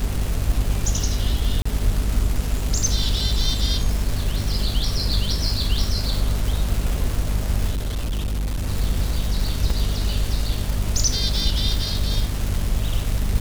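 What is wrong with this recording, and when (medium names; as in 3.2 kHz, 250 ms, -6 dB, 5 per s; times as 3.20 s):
crackle 460 per s -24 dBFS
hum 50 Hz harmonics 5 -25 dBFS
1.62–1.66 s: dropout 35 ms
7.71–8.67 s: clipped -21 dBFS
9.70 s: dropout 3.3 ms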